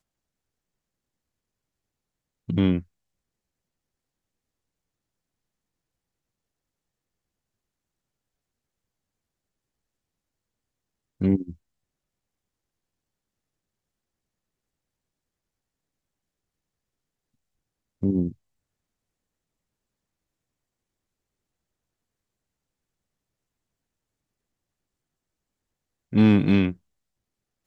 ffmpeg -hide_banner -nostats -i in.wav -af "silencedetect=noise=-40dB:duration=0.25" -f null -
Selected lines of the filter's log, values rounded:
silence_start: 0.00
silence_end: 2.49 | silence_duration: 2.49
silence_start: 2.82
silence_end: 11.21 | silence_duration: 8.39
silence_start: 11.53
silence_end: 18.02 | silence_duration: 6.50
silence_start: 18.32
silence_end: 26.12 | silence_duration: 7.81
silence_start: 26.73
silence_end: 27.67 | silence_duration: 0.94